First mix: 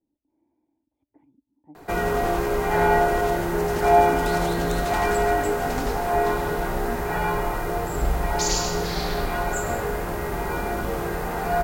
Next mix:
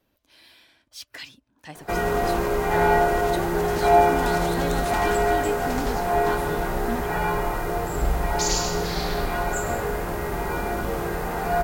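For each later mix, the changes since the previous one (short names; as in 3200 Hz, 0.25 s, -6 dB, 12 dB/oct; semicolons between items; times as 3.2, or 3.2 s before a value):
speech: remove vocal tract filter u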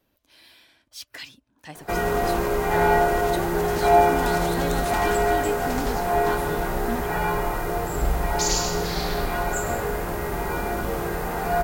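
master: add high shelf 9300 Hz +3.5 dB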